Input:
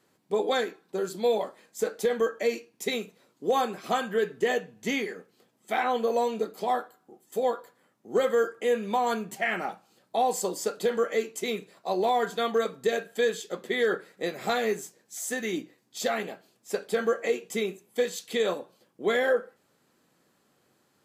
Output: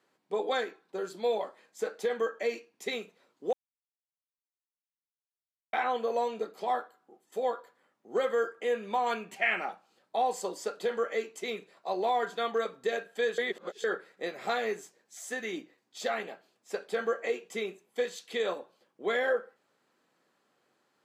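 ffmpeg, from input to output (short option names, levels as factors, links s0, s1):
-filter_complex "[0:a]asettb=1/sr,asplit=3[s0][s1][s2];[s0]atrim=end=9.064[s3];[s1]atrim=start=9.06:end=9.65,asetpts=PTS-STARTPTS,afade=t=in:d=0.004:c=qsin,afade=t=out:st=0.586:d=0.004:c=qsin,equalizer=f=2500:t=o:w=0.51:g=9.5[s4];[s2]atrim=start=9.646[s5];[s3][s4]acrossfade=d=0.004:c1=hsin:c2=qsin[s6];[s6][s5]acrossfade=d=0.004:c1=qsin:c2=hsin,asplit=5[s7][s8][s9][s10][s11];[s7]atrim=end=3.53,asetpts=PTS-STARTPTS,afade=t=out:st=3.526:d=0.004:c=hsin[s12];[s8]atrim=start=3.53:end=5.73,asetpts=PTS-STARTPTS,volume=0[s13];[s9]atrim=start=5.73:end=13.382,asetpts=PTS-STARTPTS,afade=t=in:d=0.004:c=hsin[s14];[s10]atrim=start=13.378:end=13.842,asetpts=PTS-STARTPTS,areverse[s15];[s11]atrim=start=13.838[s16];[s12][s13][s14]concat=n=3:v=0:a=1[s17];[s17][s15]acrossfade=d=0.004:c1=hsin:c2=hsin[s18];[s18][s16]acrossfade=d=0.004:c1=hsin:c2=hsin,highpass=f=530:p=1,aemphasis=mode=reproduction:type=50kf,volume=0.891"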